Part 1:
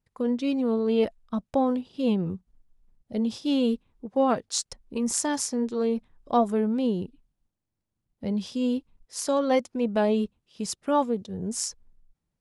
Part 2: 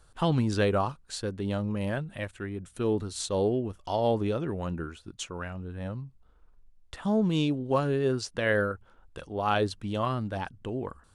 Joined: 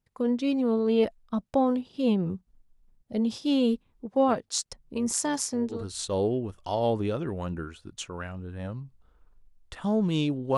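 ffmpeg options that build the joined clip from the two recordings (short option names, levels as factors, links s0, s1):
-filter_complex "[0:a]asettb=1/sr,asplit=3[s0][s1][s2];[s0]atrim=end=4.284[s3];[s1]atrim=start=4.28:end=5.86,asetpts=PTS-STARTPTS,afade=t=in:d=0.004:c=qsin,afade=t=out:st=1.576:d=0.004:c=qsin,tremolo=f=140:d=0.261[s4];[s2]atrim=start=5.856[s5];[s3][s4]acrossfade=d=0.004:c1=hsin:c2=qsin[s6];[s6][s5]acrossfade=d=0.004:c1=qsin:c2=hsin,apad=whole_dur=10.57,atrim=end=10.57,atrim=end=5.86,asetpts=PTS-STARTPTS[s7];[1:a]atrim=start=2.89:end=7.78,asetpts=PTS-STARTPTS[s8];[s7][s8]acrossfade=d=0.18:c1=tri:c2=tri"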